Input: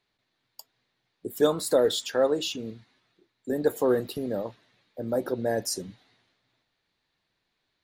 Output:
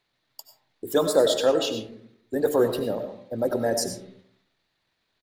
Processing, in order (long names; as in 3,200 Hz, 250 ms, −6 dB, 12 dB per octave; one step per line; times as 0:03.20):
mains-hum notches 50/100/150/200/250/300/350/400/450 Hz
tempo change 1.5×
comb and all-pass reverb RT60 0.63 s, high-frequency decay 0.4×, pre-delay 55 ms, DRR 7 dB
level +3 dB